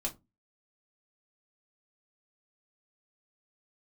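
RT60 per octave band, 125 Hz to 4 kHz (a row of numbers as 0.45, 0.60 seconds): 0.35, 0.40, 0.25, 0.20, 0.15, 0.15 seconds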